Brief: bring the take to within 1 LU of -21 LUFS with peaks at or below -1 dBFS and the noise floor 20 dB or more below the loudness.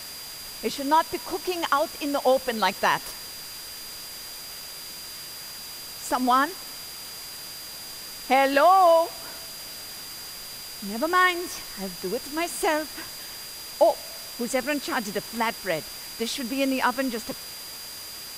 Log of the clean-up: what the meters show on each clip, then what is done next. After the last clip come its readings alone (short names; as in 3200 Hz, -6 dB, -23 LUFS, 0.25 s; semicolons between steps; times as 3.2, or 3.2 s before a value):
steady tone 4800 Hz; tone level -40 dBFS; noise floor -39 dBFS; noise floor target -47 dBFS; loudness -26.5 LUFS; peak -8.0 dBFS; loudness target -21.0 LUFS
-> notch 4800 Hz, Q 30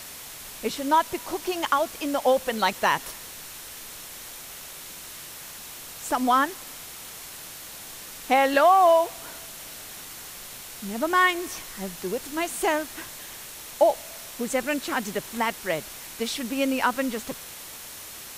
steady tone none; noise floor -41 dBFS; noise floor target -45 dBFS
-> denoiser 6 dB, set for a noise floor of -41 dBFS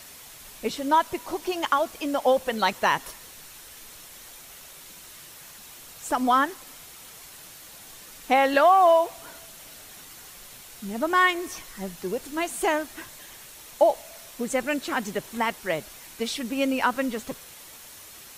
noise floor -46 dBFS; loudness -24.5 LUFS; peak -8.5 dBFS; loudness target -21.0 LUFS
-> gain +3.5 dB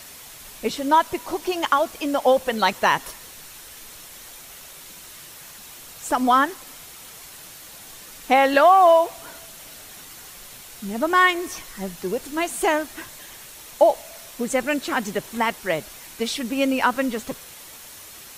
loudness -21.0 LUFS; peak -5.0 dBFS; noise floor -42 dBFS